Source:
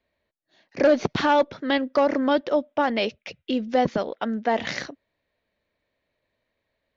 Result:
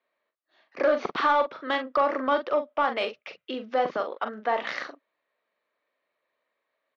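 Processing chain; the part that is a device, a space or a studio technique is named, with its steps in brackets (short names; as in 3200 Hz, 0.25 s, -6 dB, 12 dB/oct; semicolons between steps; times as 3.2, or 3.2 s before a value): intercom (BPF 410–3600 Hz; bell 1200 Hz +10 dB 0.38 oct; soft clip -10.5 dBFS, distortion -19 dB; doubler 42 ms -8 dB); gain -2.5 dB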